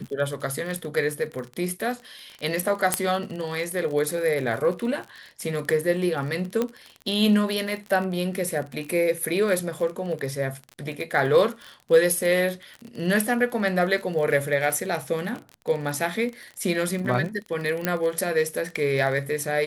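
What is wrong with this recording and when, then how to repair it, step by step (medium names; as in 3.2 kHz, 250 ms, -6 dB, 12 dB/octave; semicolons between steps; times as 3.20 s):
crackle 32 per s -30 dBFS
2.94 s: pop -5 dBFS
6.62 s: pop -12 dBFS
17.85 s: pop -8 dBFS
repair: de-click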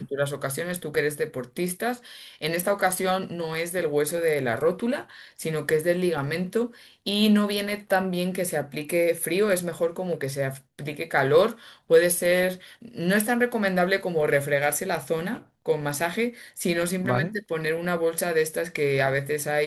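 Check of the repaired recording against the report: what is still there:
6.62 s: pop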